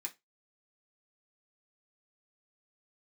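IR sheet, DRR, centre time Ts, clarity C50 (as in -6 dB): -1.5 dB, 7 ms, 19.5 dB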